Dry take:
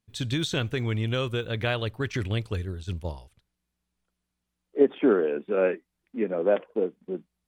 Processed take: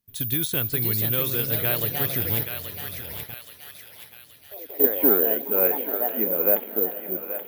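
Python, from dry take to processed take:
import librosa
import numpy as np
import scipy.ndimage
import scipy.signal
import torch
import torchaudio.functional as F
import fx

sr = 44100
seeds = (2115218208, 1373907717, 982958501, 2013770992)

y = fx.echo_pitch(x, sr, ms=568, semitones=3, count=3, db_per_echo=-6.0)
y = fx.echo_diffused(y, sr, ms=509, feedback_pct=57, wet_db=-16)
y = fx.level_steps(y, sr, step_db=20, at=(2.43, 4.84))
y = fx.echo_thinned(y, sr, ms=827, feedback_pct=53, hz=1100.0, wet_db=-5)
y = (np.kron(y[::3], np.eye(3)[0]) * 3)[:len(y)]
y = F.gain(torch.from_numpy(y), -2.5).numpy()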